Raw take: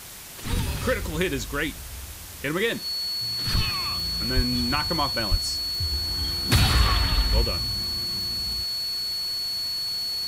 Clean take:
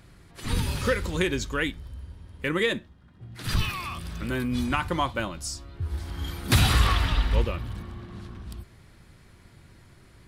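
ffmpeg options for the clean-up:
ffmpeg -i in.wav -filter_complex "[0:a]adeclick=threshold=4,bandreject=frequency=4400:width=30,asplit=3[link_01][link_02][link_03];[link_01]afade=type=out:start_time=4.35:duration=0.02[link_04];[link_02]highpass=frequency=140:width=0.5412,highpass=frequency=140:width=1.3066,afade=type=in:start_time=4.35:duration=0.02,afade=type=out:start_time=4.47:duration=0.02[link_05];[link_03]afade=type=in:start_time=4.47:duration=0.02[link_06];[link_04][link_05][link_06]amix=inputs=3:normalize=0,asplit=3[link_07][link_08][link_09];[link_07]afade=type=out:start_time=5.3:duration=0.02[link_10];[link_08]highpass=frequency=140:width=0.5412,highpass=frequency=140:width=1.3066,afade=type=in:start_time=5.3:duration=0.02,afade=type=out:start_time=5.42:duration=0.02[link_11];[link_09]afade=type=in:start_time=5.42:duration=0.02[link_12];[link_10][link_11][link_12]amix=inputs=3:normalize=0,afftdn=noise_reduction=16:noise_floor=-37" out.wav

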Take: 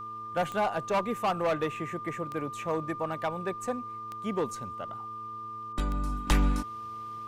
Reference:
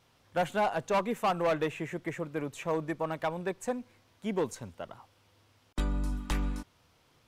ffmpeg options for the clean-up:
ffmpeg -i in.wav -af "adeclick=threshold=4,bandreject=frequency=110.7:width_type=h:width=4,bandreject=frequency=221.4:width_type=h:width=4,bandreject=frequency=332.1:width_type=h:width=4,bandreject=frequency=442.8:width_type=h:width=4,bandreject=frequency=1200:width=30,asetnsamples=nb_out_samples=441:pad=0,asendcmd='6.27 volume volume -7dB',volume=0dB" out.wav

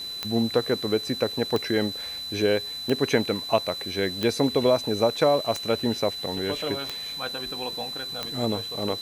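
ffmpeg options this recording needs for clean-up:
ffmpeg -i in.wav -af "adeclick=threshold=4,bandreject=frequency=4000:width=30,afwtdn=0.0045" out.wav

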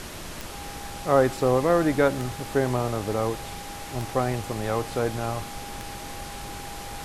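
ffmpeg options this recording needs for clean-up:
ffmpeg -i in.wav -af "adeclick=threshold=4,bandreject=frequency=810:width=30,afftdn=noise_reduction=30:noise_floor=-37" out.wav

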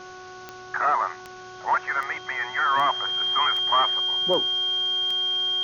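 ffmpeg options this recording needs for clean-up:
ffmpeg -i in.wav -af "adeclick=threshold=4,bandreject=frequency=369.2:width_type=h:width=4,bandreject=frequency=738.4:width_type=h:width=4,bandreject=frequency=1107.6:width_type=h:width=4,bandreject=frequency=1476.8:width_type=h:width=4,bandreject=frequency=3200:width=30,afwtdn=0.005" out.wav

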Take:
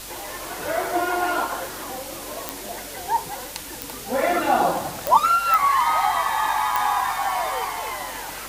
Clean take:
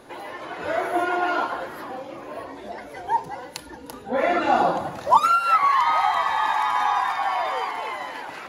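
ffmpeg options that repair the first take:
ffmpeg -i in.wav -af "adeclick=threshold=4,bandreject=frequency=46.4:width_type=h:width=4,bandreject=frequency=92.8:width_type=h:width=4,bandreject=frequency=139.2:width_type=h:width=4,bandreject=frequency=185.6:width_type=h:width=4,bandreject=frequency=232:width_type=h:width=4,afwtdn=0.016" out.wav

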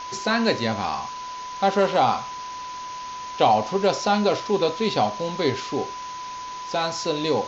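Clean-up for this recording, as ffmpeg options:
ffmpeg -i in.wav -af "bandreject=frequency=1000:width=30,afwtdn=0.013" out.wav

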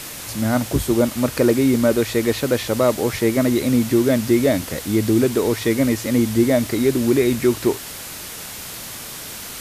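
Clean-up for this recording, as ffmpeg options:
ffmpeg -i in.wav -af "adeclick=threshold=4,afwtdn=0.025" out.wav

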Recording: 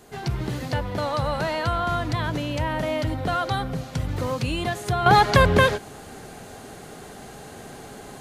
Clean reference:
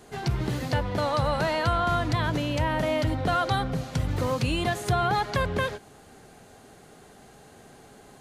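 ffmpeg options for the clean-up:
ffmpeg -i in.wav -af "agate=range=-21dB:threshold=-33dB,asetnsamples=nb_out_samples=441:pad=0,asendcmd='5.06 volume volume -10dB',volume=0dB" out.wav

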